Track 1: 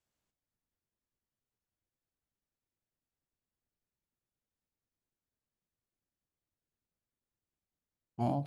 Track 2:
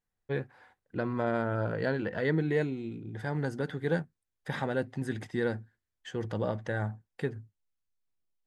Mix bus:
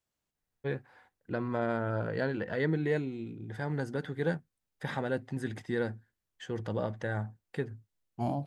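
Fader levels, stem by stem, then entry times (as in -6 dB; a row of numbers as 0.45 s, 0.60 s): 0.0 dB, -1.5 dB; 0.00 s, 0.35 s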